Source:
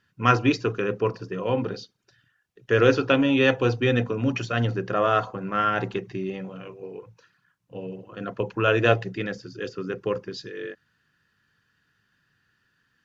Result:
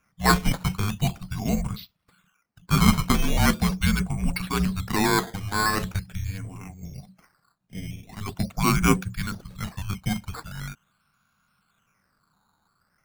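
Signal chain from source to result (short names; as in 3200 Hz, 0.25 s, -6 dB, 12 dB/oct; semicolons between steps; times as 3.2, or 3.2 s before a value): decimation with a swept rate 10×, swing 100% 0.42 Hz; frequency shift -300 Hz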